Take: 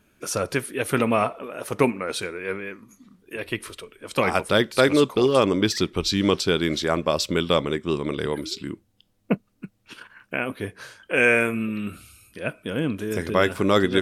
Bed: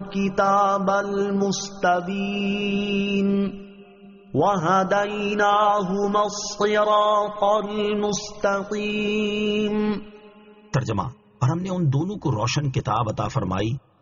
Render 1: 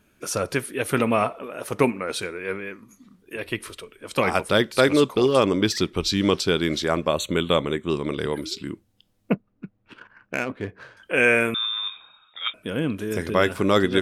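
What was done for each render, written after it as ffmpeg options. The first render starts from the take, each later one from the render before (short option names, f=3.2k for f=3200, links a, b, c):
-filter_complex "[0:a]asettb=1/sr,asplit=3[a][b][c];[a]atrim=end=7.084[d];[b]atrim=start=7.08:end=7.9,asetpts=PTS-STARTPTS,afade=t=in:d=0.004:c=qsin,afade=t=out:st=0.816:d=0.004:c=qsin,asuperstop=centerf=5100:order=12:qfactor=3.1[e];[c]atrim=start=7.896[f];[d][e]acrossfade=d=0.004:c1=hsin:c2=qsin[g];[g][f]acrossfade=d=0.004:c1=qsin:c2=hsin,asettb=1/sr,asplit=3[h][i][j];[h]atrim=end=9.334[k];[i]atrim=start=9.33:end=10.97,asetpts=PTS-STARTPTS,afade=t=in:d=0.004:c=qsin,afade=t=out:st=1.636:d=0.004:c=qsin,adynamicsmooth=sensitivity=3.5:basefreq=1.8k[l];[j]atrim=start=10.966[m];[k][l]acrossfade=d=0.004:c1=hsin:c2=qsin[n];[n][m]acrossfade=d=0.004:c1=qsin:c2=hsin,asettb=1/sr,asplit=3[o][p][q];[o]atrim=end=11.544[r];[p]atrim=start=11.54:end=12.54,asetpts=PTS-STARTPTS,afade=t=in:d=0.004:c=qsin,afade=t=out:st=0.996:d=0.004:c=qsin,lowpass=f=3.2k:t=q:w=0.5098,lowpass=f=3.2k:t=q:w=0.6013,lowpass=f=3.2k:t=q:w=0.9,lowpass=f=3.2k:t=q:w=2.563,afreqshift=-3800[s];[q]atrim=start=12.536[t];[r][s]acrossfade=d=0.004:c1=hsin:c2=qsin[u];[u][t]acrossfade=d=0.004:c1=qsin:c2=hsin"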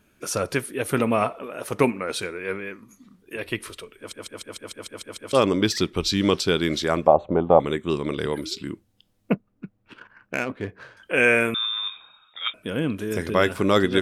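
-filter_complex "[0:a]asettb=1/sr,asplit=3[a][b][c];[a]atrim=end=0.614[d];[b]atrim=start=0.61:end=1.22,asetpts=PTS-STARTPTS,afade=t=in:d=0.004:c=qsin,afade=t=out:st=0.606:d=0.004:c=qsin,equalizer=f=2.6k:w=0.53:g=-3[e];[c]atrim=start=1.216[f];[d][e]acrossfade=d=0.004:c1=hsin:c2=qsin[g];[g][f]acrossfade=d=0.004:c1=qsin:c2=hsin,asettb=1/sr,asplit=3[h][i][j];[h]atrim=end=7.074[k];[i]atrim=start=7.07:end=7.6,asetpts=PTS-STARTPTS,afade=t=in:d=0.004:c=qsin,afade=t=out:st=0.526:d=0.004:c=qsin,lowpass=f=780:t=q:w=8.3[l];[j]atrim=start=7.596[m];[k][l]acrossfade=d=0.004:c1=hsin:c2=qsin[n];[n][m]acrossfade=d=0.004:c1=qsin:c2=hsin,asplit=10[o][p][q][r][s][t][u][v][w][x];[o]atrim=end=4.132[y];[p]atrim=start=3.978:end=4.132[z];[q]atrim=start=3.978:end=4.132[aa];[r]atrim=start=3.978:end=4.132[ab];[s]atrim=start=3.978:end=4.132[ac];[t]atrim=start=3.978:end=4.132[ad];[u]atrim=start=3.978:end=4.132[ae];[v]atrim=start=3.978:end=4.132[af];[w]atrim=start=3.978:end=4.132[ag];[x]atrim=start=5.328[ah];[y][z]acrossfade=d=0.004:c1=hsin:c2=hsin[ai];[ai][aa]acrossfade=d=0.004:c1=hsin:c2=hsin[aj];[aj][ab]acrossfade=d=0.004:c1=hsin:c2=hsin[ak];[ak][ac]acrossfade=d=0.004:c1=hsin:c2=hsin[al];[al][ad]acrossfade=d=0.004:c1=hsin:c2=hsin[am];[am][ae]acrossfade=d=0.004:c1=hsin:c2=hsin[an];[an][af]acrossfade=d=0.004:c1=hsin:c2=hsin[ao];[ao][ag]acrossfade=d=0.004:c1=hsin:c2=hsin[ap];[ap][ah]acrossfade=d=0.004:c1=hsin:c2=hsin"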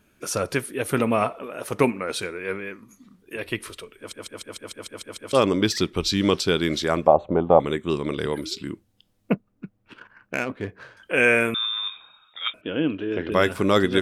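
-filter_complex "[0:a]asettb=1/sr,asplit=3[a][b][c];[a]atrim=end=12.614[d];[b]atrim=start=12.61:end=13.32,asetpts=PTS-STARTPTS,afade=t=in:d=0.004:c=qsin,afade=t=out:st=0.706:d=0.004:c=qsin,highpass=110,equalizer=f=130:t=q:w=4:g=-7,equalizer=f=210:t=q:w=4:g=-6,equalizer=f=310:t=q:w=4:g=6,equalizer=f=1.1k:t=q:w=4:g=-4,equalizer=f=2.1k:t=q:w=4:g=-5,equalizer=f=2.9k:t=q:w=4:g=8,lowpass=f=3.2k:w=0.5412,lowpass=f=3.2k:w=1.3066[e];[c]atrim=start=13.316[f];[d][e]acrossfade=d=0.004:c1=hsin:c2=qsin[g];[g][f]acrossfade=d=0.004:c1=qsin:c2=hsin"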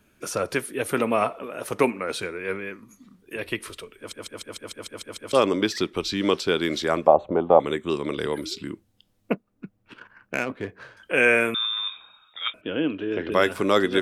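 -filter_complex "[0:a]acrossover=split=230|3100[a][b][c];[a]acompressor=threshold=-38dB:ratio=6[d];[c]alimiter=limit=-23dB:level=0:latency=1:release=306[e];[d][b][e]amix=inputs=3:normalize=0"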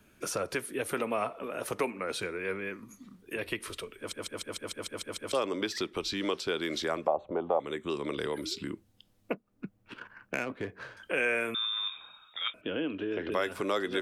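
-filter_complex "[0:a]acrossover=split=310|2000[a][b][c];[a]alimiter=level_in=5.5dB:limit=-24dB:level=0:latency=1,volume=-5.5dB[d];[d][b][c]amix=inputs=3:normalize=0,acompressor=threshold=-34dB:ratio=2"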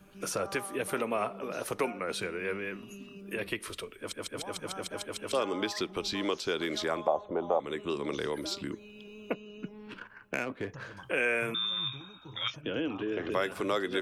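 -filter_complex "[1:a]volume=-25.5dB[a];[0:a][a]amix=inputs=2:normalize=0"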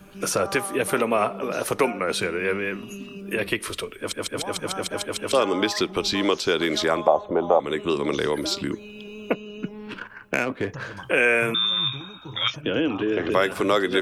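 -af "volume=9.5dB"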